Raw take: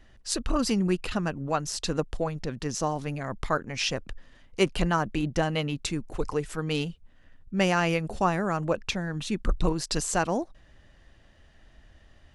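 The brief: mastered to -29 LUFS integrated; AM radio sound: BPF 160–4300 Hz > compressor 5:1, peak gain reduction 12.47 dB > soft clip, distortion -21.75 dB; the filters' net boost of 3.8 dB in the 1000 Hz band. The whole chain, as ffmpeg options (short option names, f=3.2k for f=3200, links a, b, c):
-af "highpass=160,lowpass=4.3k,equalizer=f=1k:t=o:g=5,acompressor=threshold=-29dB:ratio=5,asoftclip=threshold=-21dB,volume=6.5dB"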